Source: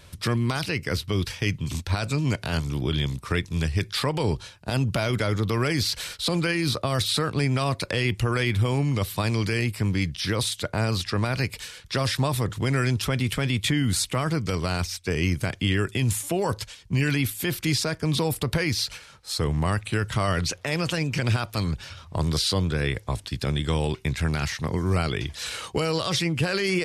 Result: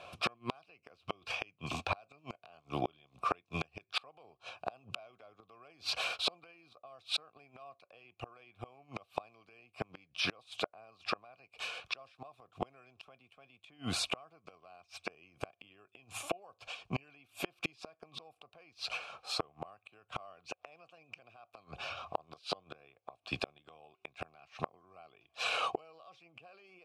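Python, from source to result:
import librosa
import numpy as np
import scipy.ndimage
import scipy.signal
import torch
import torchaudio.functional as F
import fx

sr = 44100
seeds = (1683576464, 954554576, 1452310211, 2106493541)

y = fx.vowel_filter(x, sr, vowel='a')
y = fx.gate_flip(y, sr, shuts_db=-36.0, range_db=-34)
y = F.gain(torch.from_numpy(y), 16.0).numpy()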